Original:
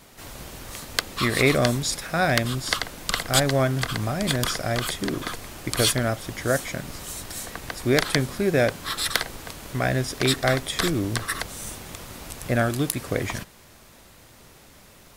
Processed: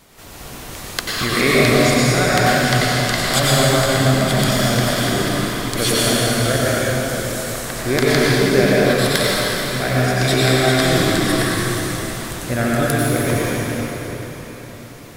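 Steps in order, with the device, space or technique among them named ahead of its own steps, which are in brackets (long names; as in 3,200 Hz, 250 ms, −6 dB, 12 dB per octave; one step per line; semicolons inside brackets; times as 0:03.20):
cathedral (convolution reverb RT60 4.6 s, pre-delay 85 ms, DRR −7.5 dB)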